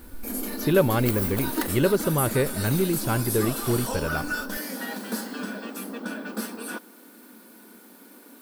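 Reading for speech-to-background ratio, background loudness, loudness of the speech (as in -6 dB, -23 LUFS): 5.0 dB, -30.5 LUFS, -25.5 LUFS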